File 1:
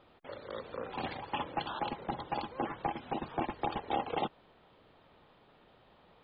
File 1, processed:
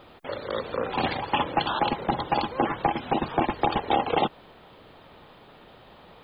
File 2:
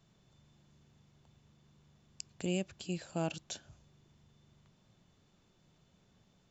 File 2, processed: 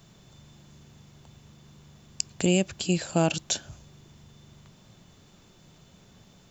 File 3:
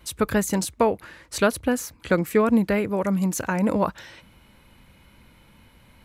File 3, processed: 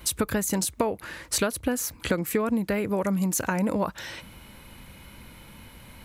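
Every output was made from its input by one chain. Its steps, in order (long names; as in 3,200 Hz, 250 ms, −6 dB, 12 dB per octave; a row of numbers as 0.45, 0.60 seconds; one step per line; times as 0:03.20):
high-shelf EQ 6,900 Hz +7 dB
downward compressor 6 to 1, threshold −29 dBFS
loudness normalisation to −27 LKFS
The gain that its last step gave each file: +11.5, +13.0, +6.0 decibels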